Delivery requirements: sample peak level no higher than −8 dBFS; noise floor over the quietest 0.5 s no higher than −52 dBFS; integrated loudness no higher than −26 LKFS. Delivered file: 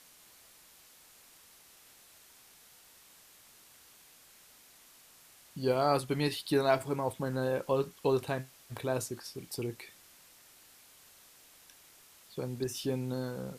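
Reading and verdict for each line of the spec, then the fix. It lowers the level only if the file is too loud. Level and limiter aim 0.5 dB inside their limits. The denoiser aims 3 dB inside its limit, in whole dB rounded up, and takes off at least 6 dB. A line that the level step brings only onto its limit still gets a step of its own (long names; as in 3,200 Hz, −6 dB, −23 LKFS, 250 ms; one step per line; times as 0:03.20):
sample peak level −13.0 dBFS: in spec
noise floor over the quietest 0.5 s −59 dBFS: in spec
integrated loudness −33.0 LKFS: in spec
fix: no processing needed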